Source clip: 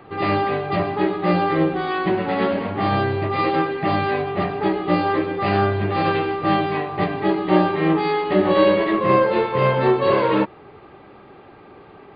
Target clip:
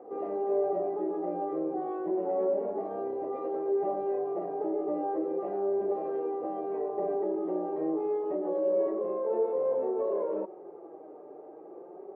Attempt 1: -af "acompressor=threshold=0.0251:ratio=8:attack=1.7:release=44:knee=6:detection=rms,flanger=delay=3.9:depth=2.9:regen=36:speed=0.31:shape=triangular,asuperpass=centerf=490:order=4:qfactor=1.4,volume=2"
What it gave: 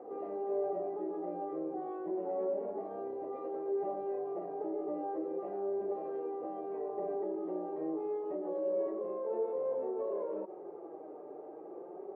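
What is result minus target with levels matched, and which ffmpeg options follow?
compression: peak gain reduction +6 dB
-af "acompressor=threshold=0.0562:ratio=8:attack=1.7:release=44:knee=6:detection=rms,flanger=delay=3.9:depth=2.9:regen=36:speed=0.31:shape=triangular,asuperpass=centerf=490:order=4:qfactor=1.4,volume=2"

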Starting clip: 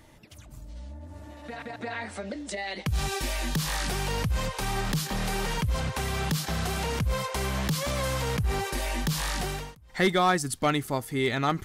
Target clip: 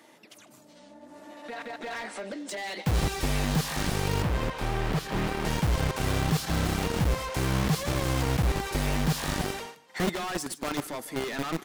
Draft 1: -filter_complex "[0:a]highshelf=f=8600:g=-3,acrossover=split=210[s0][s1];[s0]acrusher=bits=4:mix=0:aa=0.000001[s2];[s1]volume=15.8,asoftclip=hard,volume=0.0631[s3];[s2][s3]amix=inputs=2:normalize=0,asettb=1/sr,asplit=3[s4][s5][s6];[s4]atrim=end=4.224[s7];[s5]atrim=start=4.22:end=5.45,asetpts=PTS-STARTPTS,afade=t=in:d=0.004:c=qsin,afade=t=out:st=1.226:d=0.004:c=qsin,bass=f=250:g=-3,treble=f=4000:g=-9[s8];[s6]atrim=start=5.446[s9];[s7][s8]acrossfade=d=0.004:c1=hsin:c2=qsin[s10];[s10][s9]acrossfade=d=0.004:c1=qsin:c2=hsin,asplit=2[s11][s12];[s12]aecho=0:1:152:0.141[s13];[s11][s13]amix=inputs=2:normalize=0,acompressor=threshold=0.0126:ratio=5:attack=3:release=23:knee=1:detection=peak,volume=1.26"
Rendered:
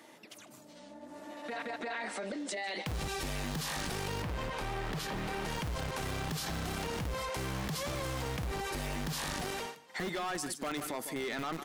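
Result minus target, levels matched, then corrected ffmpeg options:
compression: peak gain reduction +14.5 dB; overload inside the chain: distortion -6 dB
-filter_complex "[0:a]highshelf=f=8600:g=-3,acrossover=split=210[s0][s1];[s0]acrusher=bits=4:mix=0:aa=0.000001[s2];[s1]volume=50.1,asoftclip=hard,volume=0.02[s3];[s2][s3]amix=inputs=2:normalize=0,asettb=1/sr,asplit=3[s4][s5][s6];[s4]atrim=end=4.224[s7];[s5]atrim=start=4.22:end=5.45,asetpts=PTS-STARTPTS,afade=t=in:d=0.004:c=qsin,afade=t=out:st=1.226:d=0.004:c=qsin,bass=f=250:g=-3,treble=f=4000:g=-9[s8];[s6]atrim=start=5.446[s9];[s7][s8]acrossfade=d=0.004:c1=hsin:c2=qsin[s10];[s10][s9]acrossfade=d=0.004:c1=qsin:c2=hsin,asplit=2[s11][s12];[s12]aecho=0:1:152:0.141[s13];[s11][s13]amix=inputs=2:normalize=0,volume=1.26"

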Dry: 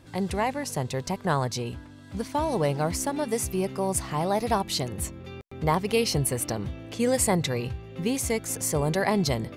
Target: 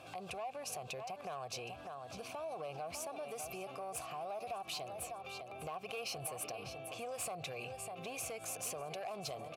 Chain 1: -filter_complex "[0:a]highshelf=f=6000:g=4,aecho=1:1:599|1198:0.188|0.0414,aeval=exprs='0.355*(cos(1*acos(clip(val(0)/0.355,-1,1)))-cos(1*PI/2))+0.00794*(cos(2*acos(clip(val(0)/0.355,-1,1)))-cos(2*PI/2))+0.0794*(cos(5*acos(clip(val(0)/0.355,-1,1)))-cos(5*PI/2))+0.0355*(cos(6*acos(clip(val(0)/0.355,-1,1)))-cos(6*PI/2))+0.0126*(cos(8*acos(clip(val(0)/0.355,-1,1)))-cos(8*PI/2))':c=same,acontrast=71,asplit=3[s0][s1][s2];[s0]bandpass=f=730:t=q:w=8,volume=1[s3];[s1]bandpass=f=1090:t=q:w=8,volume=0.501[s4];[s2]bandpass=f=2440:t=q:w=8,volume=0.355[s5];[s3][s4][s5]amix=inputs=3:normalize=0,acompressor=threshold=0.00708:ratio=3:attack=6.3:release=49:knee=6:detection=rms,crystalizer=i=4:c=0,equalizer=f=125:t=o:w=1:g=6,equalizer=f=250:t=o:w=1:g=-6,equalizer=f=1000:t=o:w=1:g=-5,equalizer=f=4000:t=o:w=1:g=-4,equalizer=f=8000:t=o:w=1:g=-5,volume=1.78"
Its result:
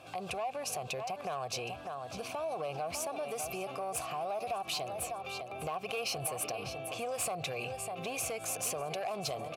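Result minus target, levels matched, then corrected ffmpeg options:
compression: peak gain reduction -6.5 dB
-filter_complex "[0:a]highshelf=f=6000:g=4,aecho=1:1:599|1198:0.188|0.0414,aeval=exprs='0.355*(cos(1*acos(clip(val(0)/0.355,-1,1)))-cos(1*PI/2))+0.00794*(cos(2*acos(clip(val(0)/0.355,-1,1)))-cos(2*PI/2))+0.0794*(cos(5*acos(clip(val(0)/0.355,-1,1)))-cos(5*PI/2))+0.0355*(cos(6*acos(clip(val(0)/0.355,-1,1)))-cos(6*PI/2))+0.0126*(cos(8*acos(clip(val(0)/0.355,-1,1)))-cos(8*PI/2))':c=same,acontrast=71,asplit=3[s0][s1][s2];[s0]bandpass=f=730:t=q:w=8,volume=1[s3];[s1]bandpass=f=1090:t=q:w=8,volume=0.501[s4];[s2]bandpass=f=2440:t=q:w=8,volume=0.355[s5];[s3][s4][s5]amix=inputs=3:normalize=0,acompressor=threshold=0.00237:ratio=3:attack=6.3:release=49:knee=6:detection=rms,crystalizer=i=4:c=0,equalizer=f=125:t=o:w=1:g=6,equalizer=f=250:t=o:w=1:g=-6,equalizer=f=1000:t=o:w=1:g=-5,equalizer=f=4000:t=o:w=1:g=-4,equalizer=f=8000:t=o:w=1:g=-5,volume=1.78"

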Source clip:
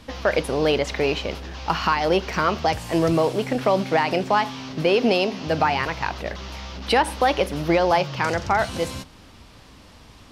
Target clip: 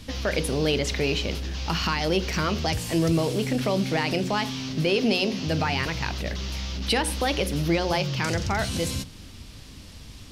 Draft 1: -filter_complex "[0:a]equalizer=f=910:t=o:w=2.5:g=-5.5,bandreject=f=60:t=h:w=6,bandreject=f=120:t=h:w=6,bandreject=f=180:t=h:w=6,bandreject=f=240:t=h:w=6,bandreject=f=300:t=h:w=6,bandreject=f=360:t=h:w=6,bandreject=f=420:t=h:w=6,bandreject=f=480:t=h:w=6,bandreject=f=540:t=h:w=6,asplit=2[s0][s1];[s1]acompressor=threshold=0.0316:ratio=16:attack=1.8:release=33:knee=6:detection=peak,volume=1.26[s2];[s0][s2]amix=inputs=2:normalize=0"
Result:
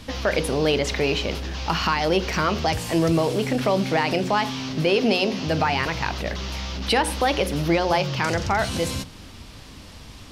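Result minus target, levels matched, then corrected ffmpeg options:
1 kHz band +3.5 dB
-filter_complex "[0:a]equalizer=f=910:t=o:w=2.5:g=-13.5,bandreject=f=60:t=h:w=6,bandreject=f=120:t=h:w=6,bandreject=f=180:t=h:w=6,bandreject=f=240:t=h:w=6,bandreject=f=300:t=h:w=6,bandreject=f=360:t=h:w=6,bandreject=f=420:t=h:w=6,bandreject=f=480:t=h:w=6,bandreject=f=540:t=h:w=6,asplit=2[s0][s1];[s1]acompressor=threshold=0.0316:ratio=16:attack=1.8:release=33:knee=6:detection=peak,volume=1.26[s2];[s0][s2]amix=inputs=2:normalize=0"

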